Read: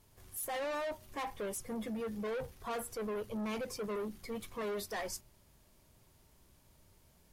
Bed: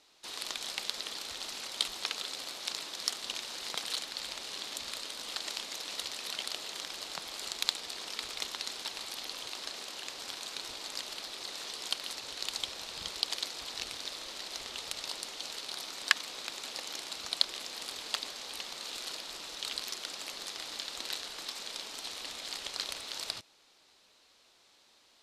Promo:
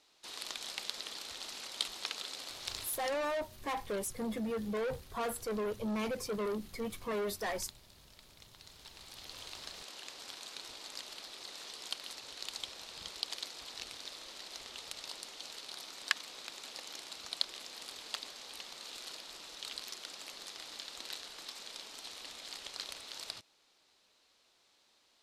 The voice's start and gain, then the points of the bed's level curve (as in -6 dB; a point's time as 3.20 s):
2.50 s, +2.5 dB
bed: 2.82 s -4 dB
3.25 s -21.5 dB
8.43 s -21.5 dB
9.43 s -6 dB